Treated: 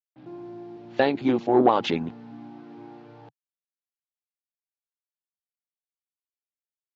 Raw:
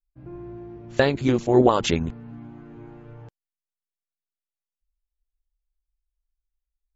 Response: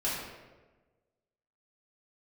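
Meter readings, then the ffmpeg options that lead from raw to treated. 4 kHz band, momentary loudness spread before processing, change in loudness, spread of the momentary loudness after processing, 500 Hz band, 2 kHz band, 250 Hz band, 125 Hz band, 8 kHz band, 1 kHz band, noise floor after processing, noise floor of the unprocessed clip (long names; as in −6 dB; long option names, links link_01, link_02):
−3.5 dB, 22 LU, −1.5 dB, 21 LU, −2.0 dB, −3.0 dB, −1.5 dB, −10.0 dB, can't be measured, +2.0 dB, below −85 dBFS, below −85 dBFS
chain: -af "acontrast=65,acrusher=bits=7:mix=0:aa=0.5,highpass=frequency=130:width=0.5412,highpass=frequency=130:width=1.3066,equalizer=frequency=140:width_type=q:width=4:gain=-8,equalizer=frequency=290:width_type=q:width=4:gain=4,equalizer=frequency=800:width_type=q:width=4:gain=9,lowpass=frequency=4400:width=0.5412,lowpass=frequency=4400:width=1.3066,volume=-8.5dB"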